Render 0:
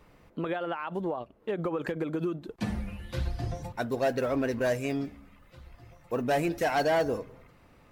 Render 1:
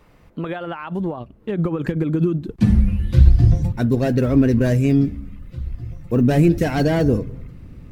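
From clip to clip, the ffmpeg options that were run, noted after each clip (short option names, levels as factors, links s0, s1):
-af "asubboost=boost=9.5:cutoff=250,volume=1.68"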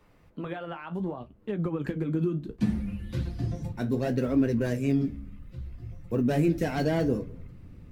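-filter_complex "[0:a]acrossover=split=160[s0][s1];[s0]acompressor=threshold=0.0447:ratio=6[s2];[s2][s1]amix=inputs=2:normalize=0,flanger=delay=9.6:depth=9.9:regen=-52:speed=0.66:shape=sinusoidal,volume=0.631"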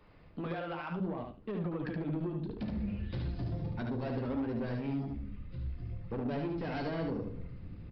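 -af "acompressor=threshold=0.0316:ratio=4,aresample=11025,asoftclip=type=tanh:threshold=0.0251,aresample=44100,aecho=1:1:73|146|219:0.631|0.107|0.0182"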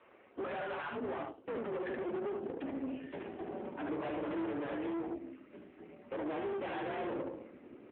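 -af "highpass=f=240:t=q:w=0.5412,highpass=f=240:t=q:w=1.307,lowpass=f=2900:t=q:w=0.5176,lowpass=f=2900:t=q:w=0.7071,lowpass=f=2900:t=q:w=1.932,afreqshift=57,aeval=exprs='(tanh(141*val(0)+0.75)-tanh(0.75))/141':c=same,volume=2.66" -ar 8000 -c:a libopencore_amrnb -b:a 7950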